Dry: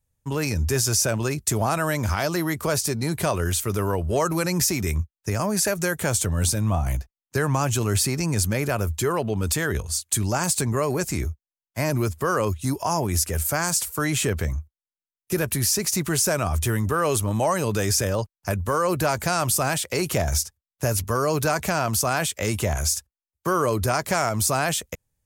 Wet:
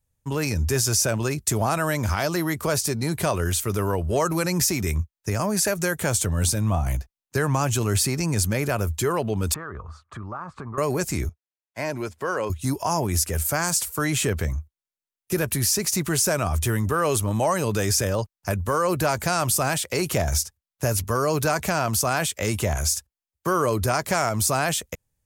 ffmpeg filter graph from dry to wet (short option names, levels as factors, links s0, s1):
-filter_complex "[0:a]asettb=1/sr,asplit=3[s0][s1][s2];[s0]atrim=end=9.544[s3];[s1]atrim=start=9.54:end=10.78,asetpts=PTS-STARTPTS,afade=t=in:d=0.004:c=qsin,afade=t=out:st=1.236:d=0.004:c=qsin,lowpass=f=1200:t=q:w=8,acompressor=threshold=0.0178:ratio=3:attack=3.2:release=140:knee=1:detection=peak[s4];[s2]atrim=start=10.776[s5];[s3][s4]acrossfade=d=0.004:c1=hsin:c2=qsin[s6];[s6][s5]acrossfade=d=0.004:c1=qsin:c2=hsin,asettb=1/sr,asplit=3[s7][s8][s9];[s7]atrim=end=11.294[s10];[s8]atrim=start=11.29:end=12.5,asetpts=PTS-STARTPTS,afade=t=in:d=0.004:c=qsin,afade=t=out:st=1.206:d=0.004:c=qsin,highpass=f=490:p=1,aemphasis=mode=reproduction:type=50fm,bandreject=f=1200:w=7.1[s11];[s9]atrim=start=12.496[s12];[s10][s11]acrossfade=d=0.004:c1=hsin:c2=qsin[s13];[s13][s12]acrossfade=d=0.004:c1=qsin:c2=hsin"